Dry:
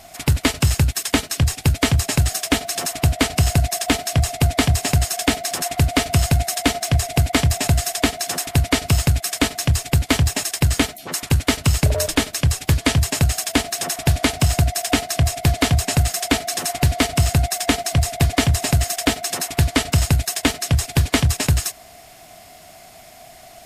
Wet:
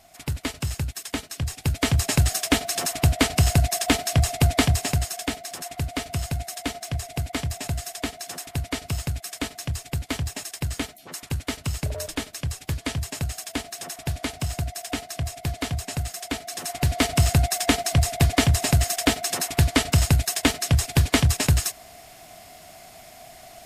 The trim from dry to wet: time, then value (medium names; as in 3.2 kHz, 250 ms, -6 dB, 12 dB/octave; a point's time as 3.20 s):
1.37 s -11 dB
2.08 s -2 dB
4.59 s -2 dB
5.41 s -11 dB
16.41 s -11 dB
17.12 s -2 dB